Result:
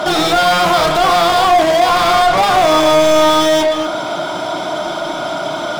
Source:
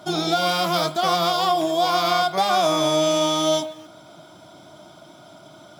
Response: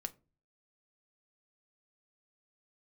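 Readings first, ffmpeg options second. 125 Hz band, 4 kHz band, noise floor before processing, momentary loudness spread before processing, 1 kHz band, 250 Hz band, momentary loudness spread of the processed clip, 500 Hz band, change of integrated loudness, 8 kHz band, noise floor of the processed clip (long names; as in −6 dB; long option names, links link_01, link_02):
+5.5 dB, +6.5 dB, −47 dBFS, 3 LU, +10.0 dB, +7.5 dB, 10 LU, +10.0 dB, +7.5 dB, +6.5 dB, −22 dBFS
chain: -filter_complex "[0:a]asplit=2[link_01][link_02];[link_02]highpass=frequency=720:poles=1,volume=34dB,asoftclip=type=tanh:threshold=-8.5dB[link_03];[link_01][link_03]amix=inputs=2:normalize=0,lowpass=frequency=2400:poles=1,volume=-6dB,asplit=2[link_04][link_05];[1:a]atrim=start_sample=2205,lowpass=frequency=1400:width=0.5412,lowpass=frequency=1400:width=1.3066,adelay=32[link_06];[link_05][link_06]afir=irnorm=-1:irlink=0,volume=-4dB[link_07];[link_04][link_07]amix=inputs=2:normalize=0,volume=2.5dB"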